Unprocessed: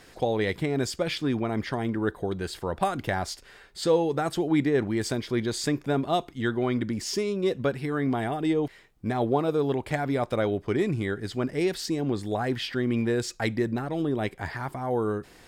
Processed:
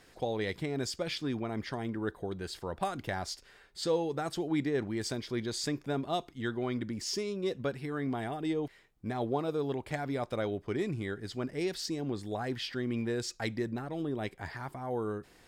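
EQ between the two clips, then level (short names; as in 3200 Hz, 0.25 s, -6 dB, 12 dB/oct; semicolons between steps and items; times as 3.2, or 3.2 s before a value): dynamic EQ 5200 Hz, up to +5 dB, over -47 dBFS, Q 1.2; -7.5 dB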